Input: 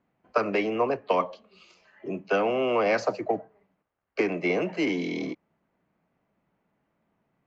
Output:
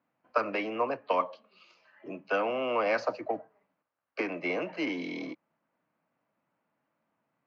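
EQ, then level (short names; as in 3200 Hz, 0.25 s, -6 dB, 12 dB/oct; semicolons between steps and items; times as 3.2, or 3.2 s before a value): speaker cabinet 110–5600 Hz, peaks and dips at 190 Hz -6 dB, 400 Hz -10 dB, 740 Hz -4 dB, 2000 Hz -3 dB, 3400 Hz -3 dB; low shelf 190 Hz -11 dB; high shelf 3900 Hz -6 dB; 0.0 dB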